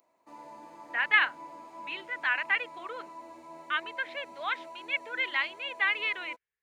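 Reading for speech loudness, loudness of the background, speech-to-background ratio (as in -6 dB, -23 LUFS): -30.0 LUFS, -47.0 LUFS, 17.0 dB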